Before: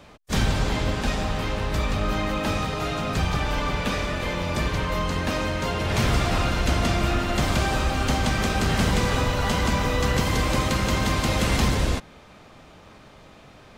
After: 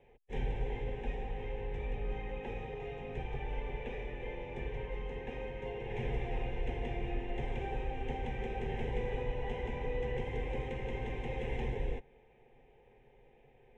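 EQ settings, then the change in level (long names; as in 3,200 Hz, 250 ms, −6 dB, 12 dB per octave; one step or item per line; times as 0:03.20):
Bessel low-pass filter 1,300 Hz, order 2
phaser with its sweep stopped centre 300 Hz, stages 6
phaser with its sweep stopped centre 930 Hz, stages 8
−5.0 dB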